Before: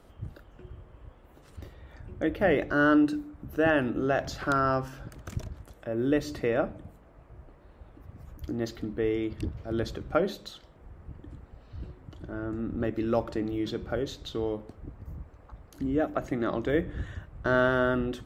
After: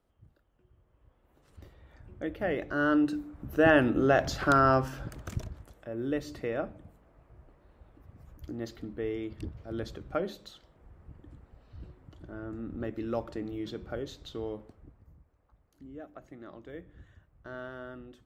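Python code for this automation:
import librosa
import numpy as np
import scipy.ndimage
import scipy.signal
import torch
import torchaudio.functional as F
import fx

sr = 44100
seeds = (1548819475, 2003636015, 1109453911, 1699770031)

y = fx.gain(x, sr, db=fx.line((0.66, -19.5), (1.65, -7.0), (2.55, -7.0), (3.76, 3.0), (5.05, 3.0), (5.89, -6.0), (14.62, -6.0), (15.21, -18.0)))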